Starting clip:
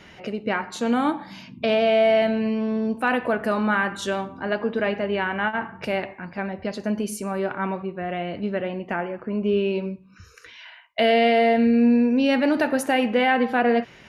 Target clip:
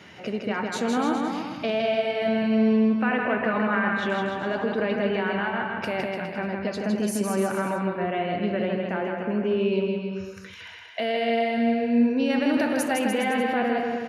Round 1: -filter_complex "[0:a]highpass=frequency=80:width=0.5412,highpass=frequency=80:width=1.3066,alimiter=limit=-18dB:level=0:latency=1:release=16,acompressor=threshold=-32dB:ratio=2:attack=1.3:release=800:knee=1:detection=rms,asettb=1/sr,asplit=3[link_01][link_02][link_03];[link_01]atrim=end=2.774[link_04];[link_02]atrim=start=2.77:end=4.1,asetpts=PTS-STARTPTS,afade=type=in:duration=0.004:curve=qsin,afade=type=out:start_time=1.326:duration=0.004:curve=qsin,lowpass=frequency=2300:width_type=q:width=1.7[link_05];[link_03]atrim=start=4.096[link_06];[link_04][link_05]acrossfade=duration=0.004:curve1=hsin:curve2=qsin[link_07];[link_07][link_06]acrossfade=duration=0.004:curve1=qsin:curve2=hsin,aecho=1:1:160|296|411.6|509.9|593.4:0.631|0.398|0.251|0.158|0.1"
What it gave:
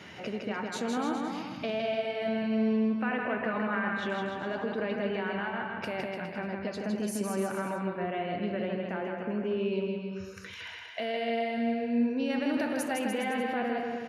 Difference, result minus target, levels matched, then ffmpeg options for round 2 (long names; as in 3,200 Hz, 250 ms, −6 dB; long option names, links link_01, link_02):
downward compressor: peak gain reduction +7 dB
-filter_complex "[0:a]highpass=frequency=80:width=0.5412,highpass=frequency=80:width=1.3066,alimiter=limit=-18dB:level=0:latency=1:release=16,asettb=1/sr,asplit=3[link_01][link_02][link_03];[link_01]atrim=end=2.774[link_04];[link_02]atrim=start=2.77:end=4.1,asetpts=PTS-STARTPTS,afade=type=in:duration=0.004:curve=qsin,afade=type=out:start_time=1.326:duration=0.004:curve=qsin,lowpass=frequency=2300:width_type=q:width=1.7[link_05];[link_03]atrim=start=4.096[link_06];[link_04][link_05]acrossfade=duration=0.004:curve1=hsin:curve2=qsin[link_07];[link_07][link_06]acrossfade=duration=0.004:curve1=qsin:curve2=hsin,aecho=1:1:160|296|411.6|509.9|593.4:0.631|0.398|0.251|0.158|0.1"